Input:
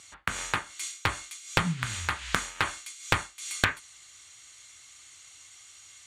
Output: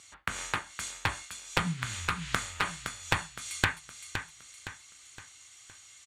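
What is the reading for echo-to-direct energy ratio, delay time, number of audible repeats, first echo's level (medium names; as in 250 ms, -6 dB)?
-7.5 dB, 515 ms, 4, -8.5 dB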